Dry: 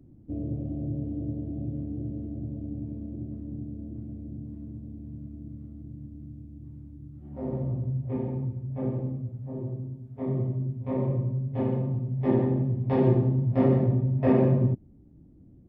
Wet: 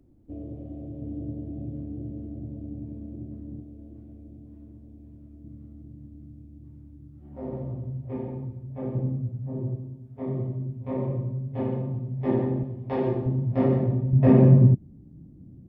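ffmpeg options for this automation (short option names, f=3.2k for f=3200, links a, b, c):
-af "asetnsamples=n=441:p=0,asendcmd='1.02 equalizer g -3;3.6 equalizer g -12;5.44 equalizer g -4.5;8.95 equalizer g 4.5;9.75 equalizer g -2;12.63 equalizer g -9;13.26 equalizer g -1;14.13 equalizer g 9',equalizer=f=150:t=o:w=1.7:g=-10.5"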